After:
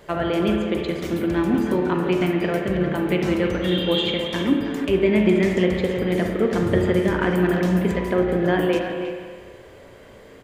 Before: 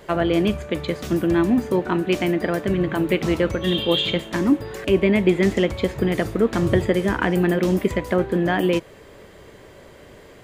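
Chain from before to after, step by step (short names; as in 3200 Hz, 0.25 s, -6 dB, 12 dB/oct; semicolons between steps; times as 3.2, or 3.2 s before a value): speakerphone echo 0.32 s, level -8 dB; spring tank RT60 1.7 s, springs 33/52 ms, chirp 40 ms, DRR 2.5 dB; 1.54–2.21 three-band squash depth 70%; gain -3 dB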